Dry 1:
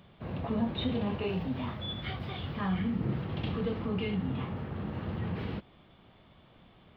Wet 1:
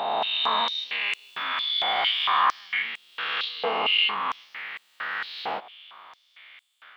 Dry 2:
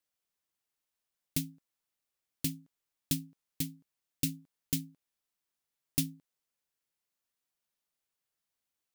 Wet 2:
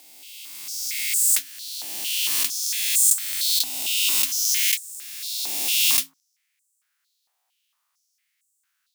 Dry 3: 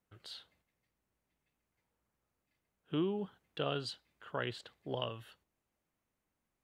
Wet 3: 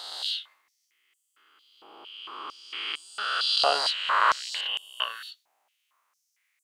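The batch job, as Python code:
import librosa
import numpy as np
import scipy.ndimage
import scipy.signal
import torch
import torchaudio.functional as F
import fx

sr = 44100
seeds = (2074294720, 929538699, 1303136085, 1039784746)

y = fx.spec_swells(x, sr, rise_s=2.7)
y = fx.filter_held_highpass(y, sr, hz=4.4, low_hz=780.0, high_hz=7800.0)
y = y * 10.0 ** (8.0 / 20.0)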